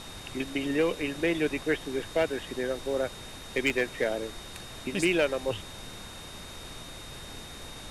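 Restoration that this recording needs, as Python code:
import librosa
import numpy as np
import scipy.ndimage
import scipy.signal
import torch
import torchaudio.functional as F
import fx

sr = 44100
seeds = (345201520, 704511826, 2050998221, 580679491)

y = fx.fix_declip(x, sr, threshold_db=-17.5)
y = fx.notch(y, sr, hz=3700.0, q=30.0)
y = fx.fix_interpolate(y, sr, at_s=(3.7,), length_ms=1.3)
y = fx.noise_reduce(y, sr, print_start_s=6.07, print_end_s=6.57, reduce_db=30.0)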